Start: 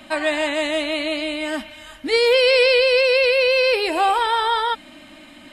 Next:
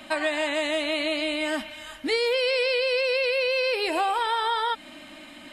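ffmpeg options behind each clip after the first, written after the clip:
ffmpeg -i in.wav -af "lowshelf=frequency=220:gain=-5.5,acompressor=threshold=-22dB:ratio=6" out.wav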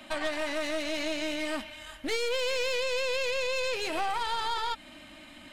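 ffmpeg -i in.wav -af "asubboost=boost=2.5:cutoff=170,aeval=exprs='(tanh(17.8*val(0)+0.75)-tanh(0.75))/17.8':channel_layout=same" out.wav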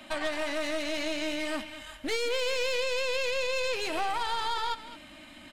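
ffmpeg -i in.wav -af "aecho=1:1:212:0.178" out.wav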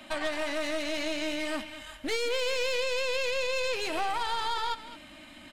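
ffmpeg -i in.wav -af anull out.wav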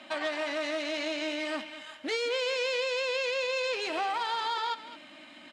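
ffmpeg -i in.wav -af "highpass=250,lowpass=6000" out.wav

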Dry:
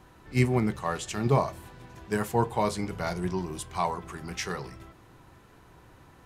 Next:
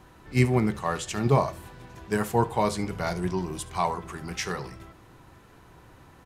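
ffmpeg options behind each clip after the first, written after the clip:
ffmpeg -i in.wav -af "aecho=1:1:71:0.112,volume=2dB" out.wav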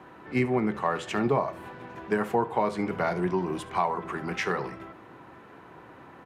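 ffmpeg -i in.wav -filter_complex "[0:a]highpass=67,acrossover=split=180 2800:gain=0.2 1 0.141[link_01][link_02][link_03];[link_01][link_02][link_03]amix=inputs=3:normalize=0,acompressor=threshold=-30dB:ratio=3,volume=6.5dB" out.wav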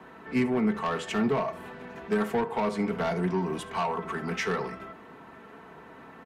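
ffmpeg -i in.wav -filter_complex "[0:a]aecho=1:1:4.5:0.59,acrossover=split=250|4200[link_01][link_02][link_03];[link_02]asoftclip=type=tanh:threshold=-23.5dB[link_04];[link_01][link_04][link_03]amix=inputs=3:normalize=0" out.wav

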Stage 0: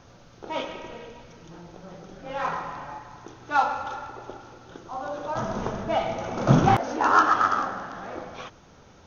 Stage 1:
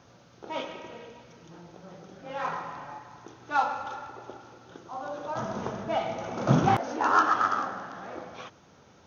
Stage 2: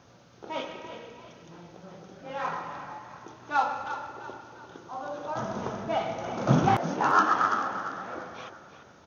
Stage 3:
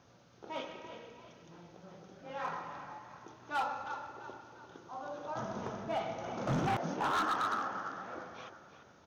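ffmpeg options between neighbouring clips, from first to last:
ffmpeg -i in.wav -af "highpass=95,volume=-3.5dB" out.wav
ffmpeg -i in.wav -filter_complex "[0:a]asplit=5[link_01][link_02][link_03][link_04][link_05];[link_02]adelay=343,afreqshift=31,volume=-12dB[link_06];[link_03]adelay=686,afreqshift=62,volume=-19.3dB[link_07];[link_04]adelay=1029,afreqshift=93,volume=-26.7dB[link_08];[link_05]adelay=1372,afreqshift=124,volume=-34dB[link_09];[link_01][link_06][link_07][link_08][link_09]amix=inputs=5:normalize=0" out.wav
ffmpeg -i in.wav -af "asoftclip=type=hard:threshold=-21.5dB,volume=-6.5dB" out.wav

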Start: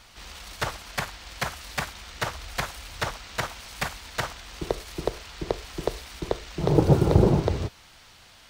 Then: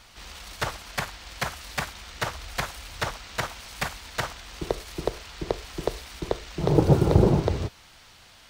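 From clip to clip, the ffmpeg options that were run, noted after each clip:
ffmpeg -i in.wav -af anull out.wav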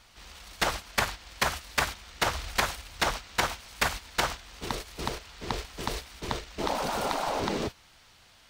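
ffmpeg -i in.wav -af "afftfilt=real='re*lt(hypot(re,im),0.178)':imag='im*lt(hypot(re,im),0.178)':win_size=1024:overlap=0.75,agate=range=-10dB:threshold=-38dB:ratio=16:detection=peak,volume=4.5dB" out.wav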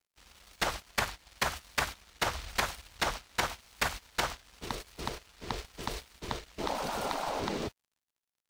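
ffmpeg -i in.wav -af "aeval=exprs='sgn(val(0))*max(abs(val(0))-0.00335,0)':channel_layout=same,volume=-3.5dB" out.wav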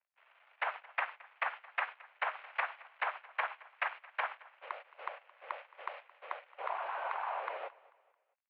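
ffmpeg -i in.wav -af "aecho=1:1:220|440|660:0.0841|0.0328|0.0128,highpass=frequency=450:width_type=q:width=0.5412,highpass=frequency=450:width_type=q:width=1.307,lowpass=frequency=2500:width_type=q:width=0.5176,lowpass=frequency=2500:width_type=q:width=0.7071,lowpass=frequency=2500:width_type=q:width=1.932,afreqshift=130,volume=-2.5dB" out.wav

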